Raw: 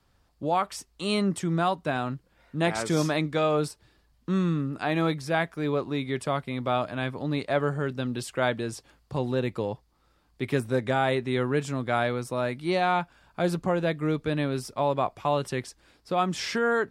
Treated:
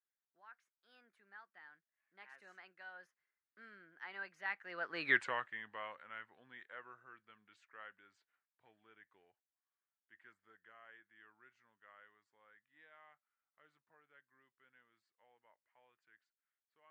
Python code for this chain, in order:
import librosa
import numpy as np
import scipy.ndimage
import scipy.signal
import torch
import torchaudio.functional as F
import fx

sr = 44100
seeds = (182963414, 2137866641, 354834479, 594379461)

y = fx.doppler_pass(x, sr, speed_mps=57, closest_m=4.9, pass_at_s=5.11)
y = fx.bandpass_q(y, sr, hz=1700.0, q=3.5)
y = y * librosa.db_to_amplitude(12.0)